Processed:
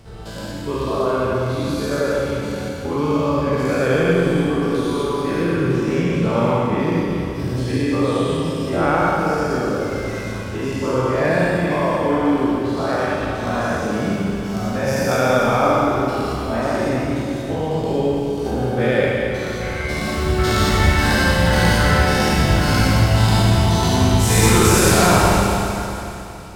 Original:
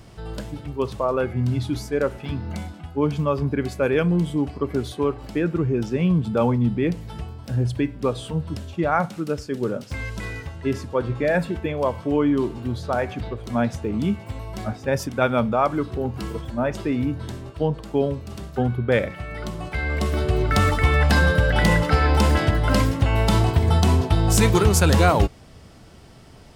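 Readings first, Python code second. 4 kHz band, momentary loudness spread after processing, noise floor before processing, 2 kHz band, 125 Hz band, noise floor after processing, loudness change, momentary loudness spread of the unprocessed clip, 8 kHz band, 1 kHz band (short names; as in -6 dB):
+7.5 dB, 9 LU, -45 dBFS, +5.5 dB, +2.5 dB, -28 dBFS, +4.0 dB, 13 LU, +8.0 dB, +6.0 dB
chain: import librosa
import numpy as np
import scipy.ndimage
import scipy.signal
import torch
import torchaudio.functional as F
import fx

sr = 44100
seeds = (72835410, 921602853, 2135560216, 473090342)

y = fx.spec_dilate(x, sr, span_ms=240)
y = fx.transient(y, sr, attack_db=3, sustain_db=-7)
y = fx.rev_schroeder(y, sr, rt60_s=3.1, comb_ms=31, drr_db=-2.5)
y = y * librosa.db_to_amplitude(-6.0)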